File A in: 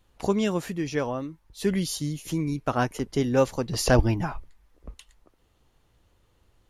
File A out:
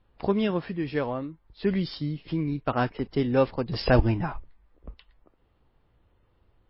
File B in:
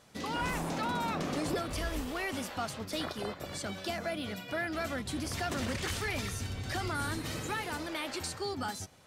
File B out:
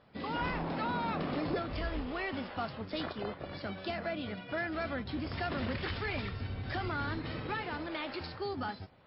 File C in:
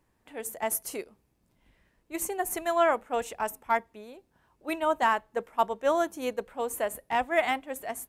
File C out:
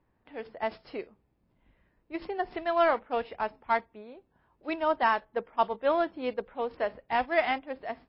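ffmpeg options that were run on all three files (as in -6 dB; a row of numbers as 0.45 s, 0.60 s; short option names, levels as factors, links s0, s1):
-af "adynamicsmooth=sensitivity=5.5:basefreq=2800" -ar 12000 -c:a libmp3lame -b:a 24k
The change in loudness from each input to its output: -0.5 LU, -1.5 LU, -0.5 LU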